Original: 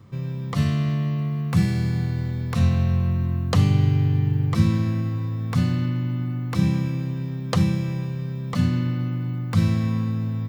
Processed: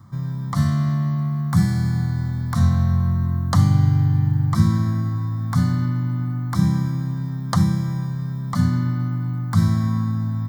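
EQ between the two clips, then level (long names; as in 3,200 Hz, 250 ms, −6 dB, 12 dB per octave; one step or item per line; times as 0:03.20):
low-shelf EQ 100 Hz −5 dB
phaser with its sweep stopped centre 1,100 Hz, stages 4
+5.5 dB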